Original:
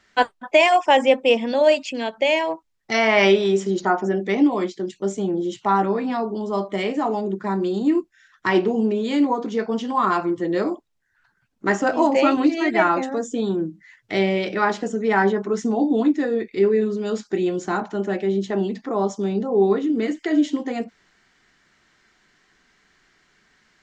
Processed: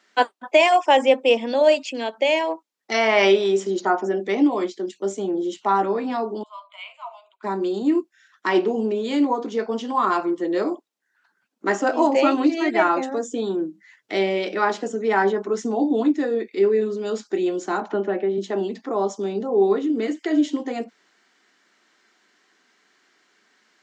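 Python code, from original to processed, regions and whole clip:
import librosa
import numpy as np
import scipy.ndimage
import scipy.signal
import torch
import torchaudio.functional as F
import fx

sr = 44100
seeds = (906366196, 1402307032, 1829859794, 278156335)

y = fx.chain(x, sr, fx.fixed_phaser(hz=1200.0, stages=8),
    fx.dynamic_eq(hz=4200.0, q=0.78, threshold_db=-42.0, ratio=4.0, max_db=-4),
    fx.cheby_ripple_highpass(hz=650.0, ripple_db=9), at=(6.43, 7.43))
y = fx.chain(y, sr, fx.lowpass(hz=2200.0, slope=12),
    fx.band_squash(depth_pct=100), at=(17.9, 18.38))
y = scipy.signal.sosfilt(scipy.signal.butter(4, 240.0, 'highpass', fs=sr, output='sos'), y)
y = fx.peak_eq(y, sr, hz=1900.0, db=-2.5, octaves=0.77)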